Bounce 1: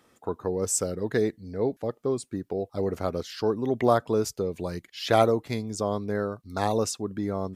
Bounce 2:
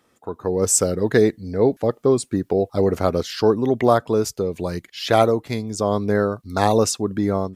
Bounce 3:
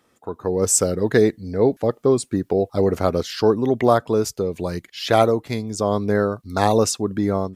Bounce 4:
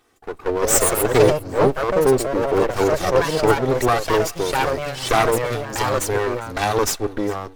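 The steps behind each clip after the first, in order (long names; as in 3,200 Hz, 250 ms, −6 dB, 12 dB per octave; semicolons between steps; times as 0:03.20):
automatic gain control gain up to 12.5 dB; level −1 dB
no processing that can be heard
lower of the sound and its delayed copy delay 2.6 ms; delay with pitch and tempo change per echo 234 ms, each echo +3 semitones, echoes 2; feedback echo with a high-pass in the loop 404 ms, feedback 30%, high-pass 1,200 Hz, level −22 dB; level +2.5 dB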